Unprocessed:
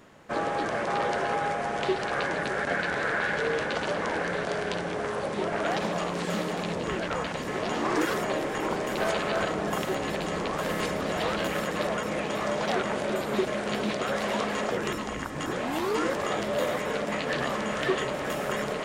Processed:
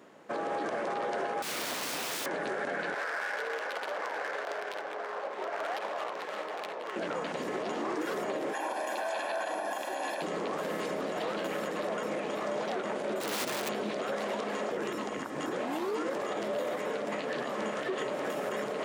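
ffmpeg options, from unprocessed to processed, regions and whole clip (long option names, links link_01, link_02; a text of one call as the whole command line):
ffmpeg -i in.wav -filter_complex "[0:a]asettb=1/sr,asplit=3[link_01][link_02][link_03];[link_01]atrim=end=1.424[link_04];[link_02]atrim=start=1.42:end=2.26,asetpts=PTS-STARTPTS,afade=type=in:duration=0.004:curve=qsin,afade=type=out:start_time=0.836:duration=0.004:curve=qsin,equalizer=frequency=1400:width_type=o:width=2.3:gain=4,bandreject=frequency=60:width_type=h:width=6,bandreject=frequency=120:width_type=h:width=6,bandreject=frequency=180:width_type=h:width=6,bandreject=frequency=240:width_type=h:width=6,bandreject=frequency=300:width_type=h:width=6,bandreject=frequency=360:width_type=h:width=6,bandreject=frequency=420:width_type=h:width=6,bandreject=frequency=480:width_type=h:width=6,bandreject=frequency=540:width_type=h:width=6,aeval=exprs='(mod(22.4*val(0)+1,2)-1)/22.4':channel_layout=same[link_05];[link_03]atrim=start=2.256[link_06];[link_04][link_05]acrossfade=duration=0.004:curve1=hsin:curve2=qsin[link_07];[link_07][link_06]acrossfade=duration=0.004:curve1=qsin:curve2=hsin,asettb=1/sr,asplit=3[link_08][link_09][link_10];[link_08]atrim=end=2.944[link_11];[link_09]atrim=start=2.94:end=6.96,asetpts=PTS-STARTPTS,afade=type=in:duration=0.004:curve=qsin,afade=type=out:start_time=4.016:duration=0.004:curve=qsin,highpass=730,adynamicsmooth=sensitivity=6:basefreq=1200[link_12];[link_10]atrim=start=6.956[link_13];[link_11][link_12]acrossfade=duration=0.004:curve1=hsin:curve2=qsin[link_14];[link_14][link_13]acrossfade=duration=0.004:curve1=qsin:curve2=hsin,asettb=1/sr,asplit=3[link_15][link_16][link_17];[link_15]atrim=end=8.534[link_18];[link_16]atrim=start=8.53:end=10.22,asetpts=PTS-STARTPTS,afade=type=in:duration=0.004:curve=qsin,afade=type=out:start_time=1.686:duration=0.004:curve=qsin,highpass=frequency=330:width=0.5412,highpass=frequency=330:width=1.3066,aecho=1:1:1.2:0.78,atrim=end_sample=74529,aeval=exprs='val(0)+0.00398*sin(2*PI*11000*n/s)':channel_layout=same[link_19];[link_17]atrim=start=10.216[link_20];[link_18][link_19]acrossfade=duration=0.004:curve1=hsin:curve2=qsin[link_21];[link_21][link_20]acrossfade=duration=0.004:curve1=qsin:curve2=hsin,asettb=1/sr,asplit=3[link_22][link_23][link_24];[link_22]atrim=end=13.204[link_25];[link_23]atrim=start=13.2:end=13.69,asetpts=PTS-STARTPTS,afade=type=in:duration=0.004:curve=qsin,afade=type=out:start_time=0.486:duration=0.004:curve=qsin,equalizer=frequency=4200:width_type=o:width=1.7:gain=6.5,aeval=exprs='(mod(15.8*val(0)+1,2)-1)/15.8':channel_layout=same[link_26];[link_24]atrim=start=13.686[link_27];[link_25][link_26]acrossfade=duration=0.004:curve1=hsin:curve2=qsin[link_28];[link_28][link_27]acrossfade=duration=0.004:curve1=qsin:curve2=hsin,highpass=310,tiltshelf=frequency=680:gain=4.5,alimiter=level_in=1dB:limit=-24dB:level=0:latency=1:release=62,volume=-1dB" out.wav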